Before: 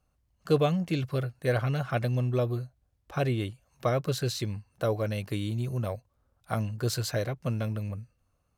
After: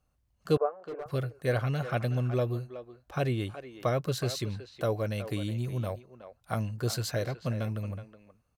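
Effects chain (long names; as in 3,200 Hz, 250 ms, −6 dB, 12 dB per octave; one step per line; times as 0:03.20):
0:00.57–0:01.06: elliptic band-pass filter 420–1,400 Hz, stop band 50 dB
far-end echo of a speakerphone 370 ms, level −11 dB
level −1.5 dB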